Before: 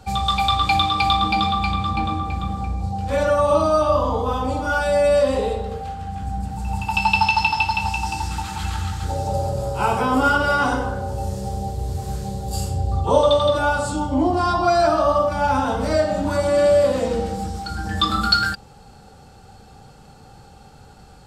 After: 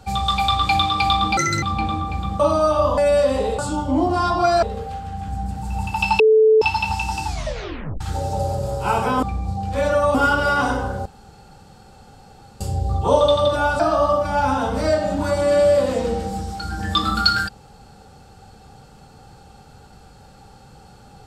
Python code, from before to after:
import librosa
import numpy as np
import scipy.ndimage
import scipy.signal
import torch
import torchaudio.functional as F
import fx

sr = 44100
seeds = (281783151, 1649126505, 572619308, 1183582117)

y = fx.edit(x, sr, fx.speed_span(start_s=1.37, length_s=0.44, speed=1.72),
    fx.move(start_s=2.58, length_s=0.92, to_s=10.17),
    fx.cut(start_s=4.08, length_s=0.88),
    fx.bleep(start_s=7.14, length_s=0.42, hz=437.0, db=-9.5),
    fx.tape_stop(start_s=8.2, length_s=0.75),
    fx.room_tone_fill(start_s=11.08, length_s=1.55),
    fx.move(start_s=13.82, length_s=1.04, to_s=5.57), tone=tone)